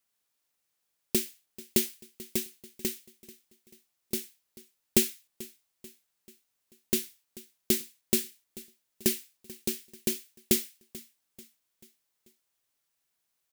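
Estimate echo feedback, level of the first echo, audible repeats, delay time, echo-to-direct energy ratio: 48%, −19.5 dB, 3, 438 ms, −18.5 dB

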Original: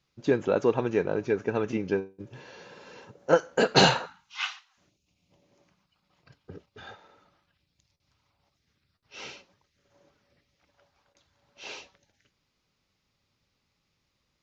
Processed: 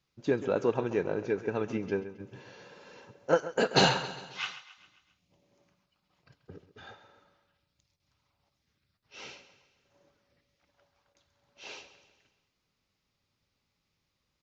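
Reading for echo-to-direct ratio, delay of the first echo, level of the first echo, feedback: −12.5 dB, 134 ms, −14.0 dB, 52%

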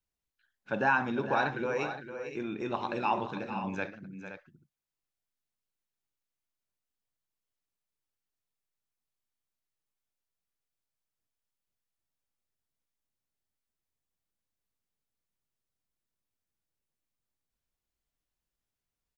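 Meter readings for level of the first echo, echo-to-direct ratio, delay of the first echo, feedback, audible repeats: −19.0 dB, −8.0 dB, 60 ms, repeats not evenly spaced, 3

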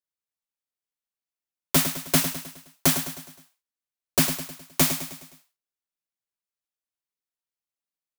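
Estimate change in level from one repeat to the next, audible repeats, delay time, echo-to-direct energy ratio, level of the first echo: −6.0 dB, 5, 104 ms, −8.5 dB, −9.5 dB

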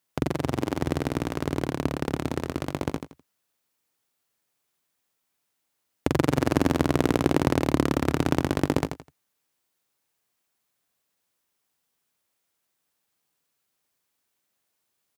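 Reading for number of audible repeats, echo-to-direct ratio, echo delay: 3, −6.5 dB, 84 ms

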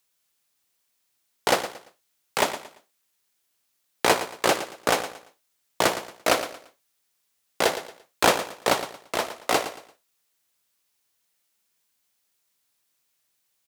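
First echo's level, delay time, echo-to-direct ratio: −12.0 dB, 114 ms, −11.5 dB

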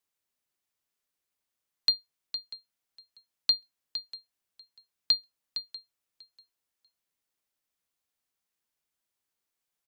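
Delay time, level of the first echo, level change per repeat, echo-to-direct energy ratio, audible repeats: 642 ms, −19.0 dB, −15.5 dB, −19.0 dB, 2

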